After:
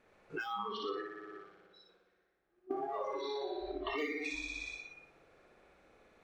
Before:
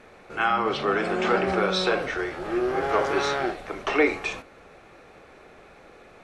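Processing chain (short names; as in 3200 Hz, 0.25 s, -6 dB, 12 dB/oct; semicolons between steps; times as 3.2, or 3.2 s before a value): hard clip -19 dBFS, distortion -13 dB; 1.02–2.71 gate -19 dBFS, range -34 dB; 3.21–3.91 Chebyshev low-pass 4200 Hz, order 3; on a send: flutter echo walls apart 10.2 m, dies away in 1.5 s; on the sum: compressor 16:1, threshold -35 dBFS, peak gain reduction 19 dB; spectral noise reduction 21 dB; gain +2.5 dB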